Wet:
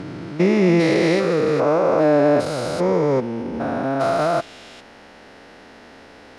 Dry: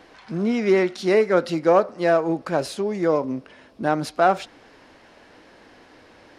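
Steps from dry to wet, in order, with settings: spectrogram pixelated in time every 400 ms; formant-preserving pitch shift -2 st; trim +8 dB

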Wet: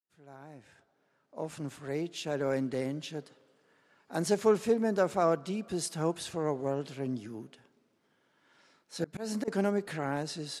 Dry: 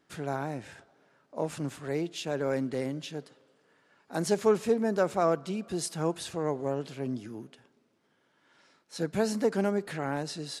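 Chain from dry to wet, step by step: fade-in on the opening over 2.42 s; 9.04–9.48 s: slow attack 181 ms; trim -1 dB

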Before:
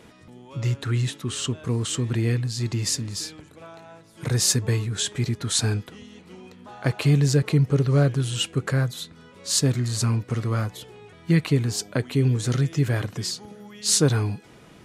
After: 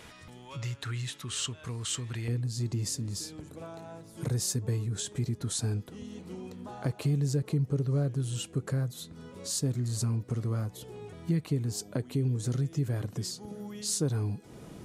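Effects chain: compression 2:1, threshold -40 dBFS, peak gain reduction 14 dB; peaking EQ 280 Hz -10.5 dB 2.6 oct, from 2.28 s 2.2 kHz; trim +4.5 dB

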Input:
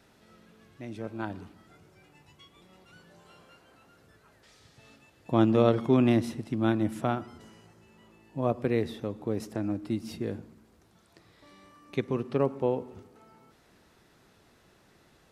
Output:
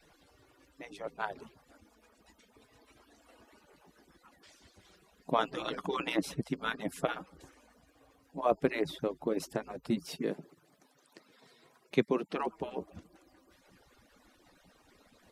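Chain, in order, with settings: harmonic-percussive separation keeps percussive; 10.05–12.36 s: high-pass 130 Hz 24 dB/octave; trim +3 dB

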